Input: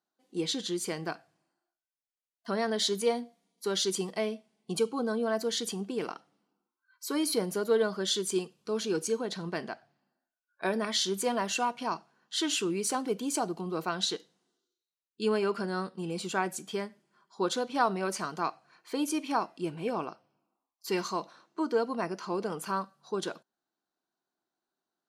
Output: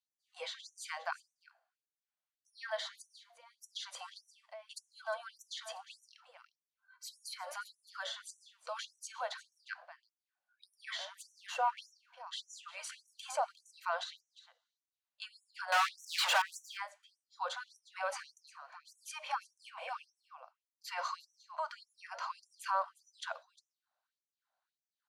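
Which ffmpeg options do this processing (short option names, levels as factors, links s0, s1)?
-filter_complex "[0:a]asettb=1/sr,asplit=3[s0][s1][s2];[s0]atrim=end=11.124[s3];[s1]atrim=start=11.12:end=11.59,asetpts=PTS-STARTPTS,afade=t=in:d=0.004:c=qsin,afade=t=out:st=0.466:d=0.004:c=qsin,aeval=exprs='if(lt(val(0),0),0.251*val(0),val(0))':c=same[s4];[s2]atrim=start=11.586[s5];[s3][s4]acrossfade=d=0.004:c1=hsin:c2=qsin[s6];[s6][s5]acrossfade=d=0.004:c1=qsin:c2=hsin,aemphasis=mode=reproduction:type=75fm,bandreject=f=5300:w=27,acrossover=split=360|1900[s7][s8][s9];[s9]acompressor=threshold=0.00447:ratio=12[s10];[s7][s8][s10]amix=inputs=3:normalize=0,alimiter=limit=0.0631:level=0:latency=1:release=43,asettb=1/sr,asplit=3[s11][s12][s13];[s11]atrim=end=15.724[s14];[s12]atrim=start=15.72:end=16.42,asetpts=PTS-STARTPTS,afade=t=in:d=0.004:c=qsin,afade=t=out:st=0.696:d=0.004:c=qsin,asplit=2[s15][s16];[s16]highpass=f=720:p=1,volume=56.2,asoftclip=type=tanh:threshold=0.0631[s17];[s15][s17]amix=inputs=2:normalize=0,lowpass=f=3700:p=1,volume=0.501[s18];[s13]atrim=start=16.416[s19];[s14][s18]acrossfade=d=0.004:c1=hsin:c2=qsin[s20];[s20][s19]acrossfade=d=0.004:c1=qsin:c2=hsin,aecho=1:1:355:0.15,afftfilt=real='re*gte(b*sr/1024,490*pow(5700/490,0.5+0.5*sin(2*PI*1.7*pts/sr)))':imag='im*gte(b*sr/1024,490*pow(5700/490,0.5+0.5*sin(2*PI*1.7*pts/sr)))':win_size=1024:overlap=0.75,volume=1.58"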